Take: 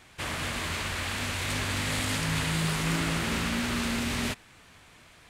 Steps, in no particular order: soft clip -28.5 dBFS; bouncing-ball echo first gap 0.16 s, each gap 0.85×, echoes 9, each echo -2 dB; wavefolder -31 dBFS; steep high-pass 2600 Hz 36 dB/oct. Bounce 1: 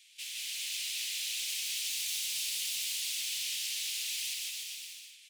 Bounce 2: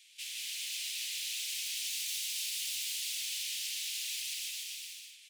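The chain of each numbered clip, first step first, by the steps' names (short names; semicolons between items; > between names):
wavefolder > steep high-pass > soft clip > bouncing-ball echo; wavefolder > bouncing-ball echo > soft clip > steep high-pass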